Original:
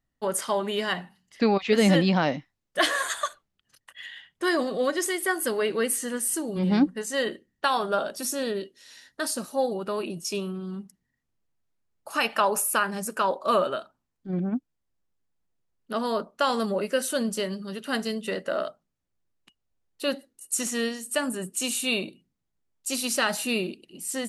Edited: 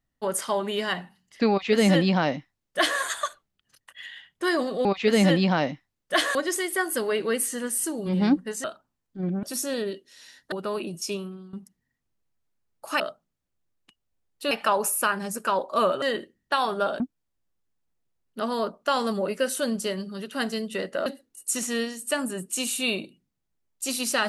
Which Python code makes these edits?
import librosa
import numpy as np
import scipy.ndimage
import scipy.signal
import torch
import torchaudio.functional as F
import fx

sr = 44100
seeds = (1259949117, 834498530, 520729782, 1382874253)

y = fx.edit(x, sr, fx.duplicate(start_s=1.5, length_s=1.5, to_s=4.85),
    fx.swap(start_s=7.14, length_s=0.98, other_s=13.74, other_length_s=0.79),
    fx.cut(start_s=9.21, length_s=0.54),
    fx.fade_out_to(start_s=10.32, length_s=0.44, floor_db=-15.5),
    fx.move(start_s=18.59, length_s=1.51, to_s=12.23), tone=tone)